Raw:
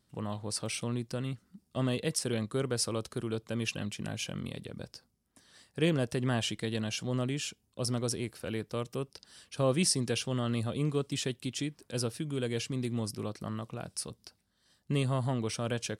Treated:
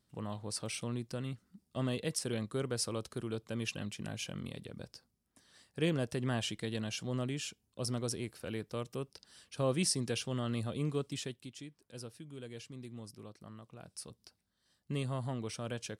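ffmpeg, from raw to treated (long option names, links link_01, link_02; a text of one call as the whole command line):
ffmpeg -i in.wav -af "volume=3dB,afade=type=out:start_time=11:duration=0.53:silence=0.334965,afade=type=in:start_time=13.67:duration=0.56:silence=0.446684" out.wav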